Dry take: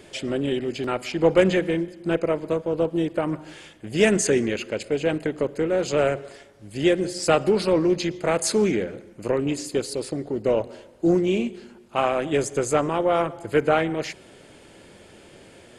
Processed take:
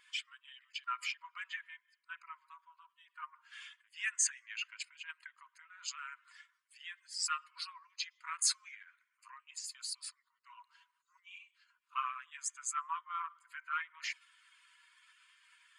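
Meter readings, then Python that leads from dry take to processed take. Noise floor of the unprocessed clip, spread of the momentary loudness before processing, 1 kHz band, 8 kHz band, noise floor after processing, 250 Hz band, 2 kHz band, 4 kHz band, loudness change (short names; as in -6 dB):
-50 dBFS, 10 LU, -13.5 dB, -5.5 dB, -82 dBFS, under -40 dB, -11.5 dB, -8.5 dB, -16.0 dB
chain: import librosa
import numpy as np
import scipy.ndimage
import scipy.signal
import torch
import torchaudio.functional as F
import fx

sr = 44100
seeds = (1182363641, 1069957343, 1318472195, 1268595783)

y = fx.spec_expand(x, sr, power=1.6)
y = fx.brickwall_highpass(y, sr, low_hz=950.0)
y = y * 10.0 ** (-4.5 / 20.0)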